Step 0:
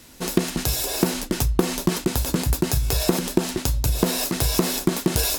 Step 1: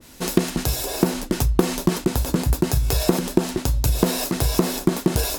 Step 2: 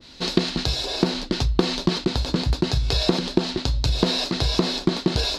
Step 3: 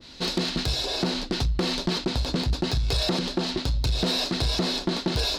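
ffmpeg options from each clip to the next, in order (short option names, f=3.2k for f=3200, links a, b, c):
-af "adynamicequalizer=threshold=0.01:dfrequency=1500:dqfactor=0.7:tfrequency=1500:tqfactor=0.7:attack=5:release=100:ratio=0.375:range=3:mode=cutabove:tftype=highshelf,volume=2dB"
-af "lowpass=f=4.2k:t=q:w=4.1,volume=-2dB"
-af "asoftclip=type=tanh:threshold=-18dB"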